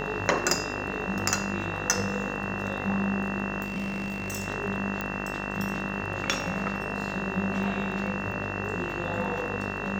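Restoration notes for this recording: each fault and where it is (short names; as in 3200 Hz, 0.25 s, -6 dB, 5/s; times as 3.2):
buzz 50 Hz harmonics 39 -35 dBFS
crackle 11/s -37 dBFS
tone 2700 Hz -36 dBFS
3.64–4.48 clipped -27 dBFS
5.01 pop -16 dBFS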